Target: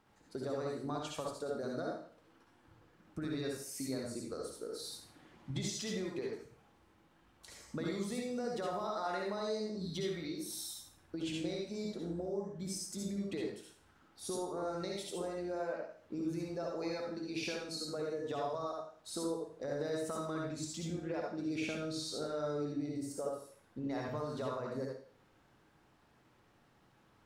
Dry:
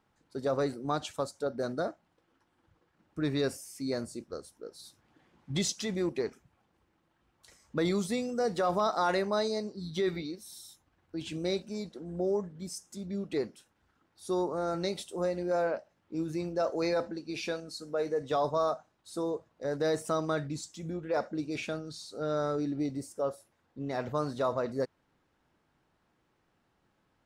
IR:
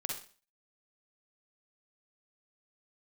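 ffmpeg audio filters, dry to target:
-filter_complex "[0:a]acompressor=threshold=-42dB:ratio=6[a];[1:a]atrim=start_sample=2205,asetrate=34398,aresample=44100[b];[a][b]afir=irnorm=-1:irlink=0,volume=3dB"

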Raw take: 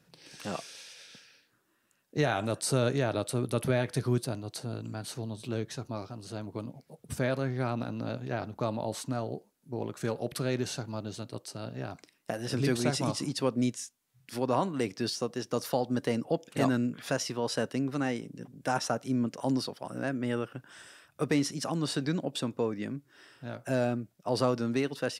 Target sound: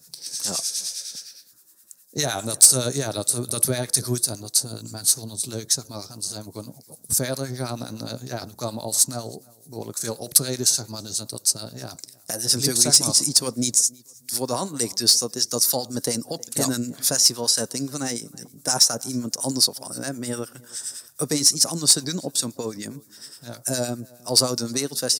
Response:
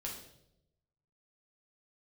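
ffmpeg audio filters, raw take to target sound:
-filter_complex "[0:a]aexciter=amount=12.4:drive=5.2:freq=4.3k,acrossover=split=1200[a][b];[a]aeval=exprs='val(0)*(1-0.7/2+0.7/2*cos(2*PI*9.7*n/s))':c=same[c];[b]aeval=exprs='val(0)*(1-0.7/2-0.7/2*cos(2*PI*9.7*n/s))':c=same[d];[c][d]amix=inputs=2:normalize=0,acontrast=49,asplit=2[e][f];[f]adelay=318,lowpass=f=4k:p=1,volume=-24dB,asplit=2[g][h];[h]adelay=318,lowpass=f=4k:p=1,volume=0.26[i];[g][i]amix=inputs=2:normalize=0[j];[e][j]amix=inputs=2:normalize=0,volume=-1.5dB"

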